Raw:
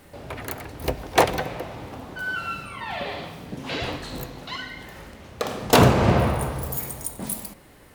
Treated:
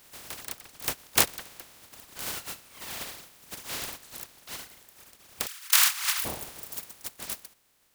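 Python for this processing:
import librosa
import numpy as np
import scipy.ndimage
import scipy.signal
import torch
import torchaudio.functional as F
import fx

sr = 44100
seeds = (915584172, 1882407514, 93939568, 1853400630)

y = fx.spec_flatten(x, sr, power=0.15)
y = fx.highpass(y, sr, hz=1100.0, slope=24, at=(5.46, 6.24), fade=0.02)
y = fx.dereverb_blind(y, sr, rt60_s=1.8)
y = y * 10.0 ** (-4.5 / 20.0)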